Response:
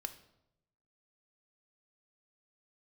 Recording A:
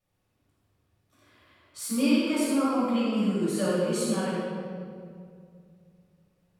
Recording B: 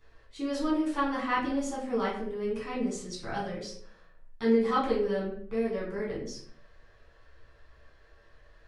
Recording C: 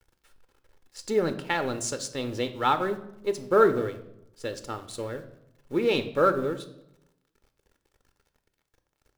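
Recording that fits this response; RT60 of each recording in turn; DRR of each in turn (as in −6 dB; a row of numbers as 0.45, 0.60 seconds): C; 2.3, 0.55, 0.85 seconds; −10.5, −7.5, 8.0 decibels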